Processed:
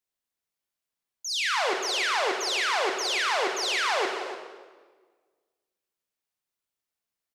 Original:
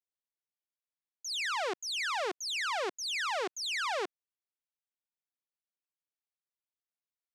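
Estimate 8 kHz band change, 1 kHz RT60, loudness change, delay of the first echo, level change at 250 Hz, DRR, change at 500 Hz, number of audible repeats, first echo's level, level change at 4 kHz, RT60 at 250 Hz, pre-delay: +7.5 dB, 1.4 s, +7.5 dB, 0.29 s, +8.5 dB, 2.0 dB, +8.0 dB, 1, -12.0 dB, +7.5 dB, 1.7 s, 22 ms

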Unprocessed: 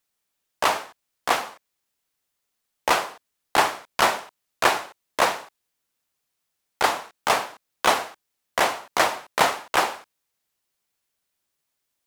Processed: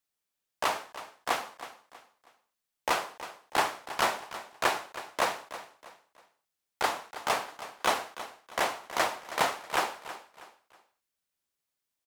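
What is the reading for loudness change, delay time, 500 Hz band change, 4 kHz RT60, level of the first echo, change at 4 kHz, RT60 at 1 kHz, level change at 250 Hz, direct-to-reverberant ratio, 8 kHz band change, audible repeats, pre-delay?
-8.0 dB, 0.321 s, -7.5 dB, none, -14.0 dB, -7.5 dB, none, -7.5 dB, none, -7.5 dB, 3, none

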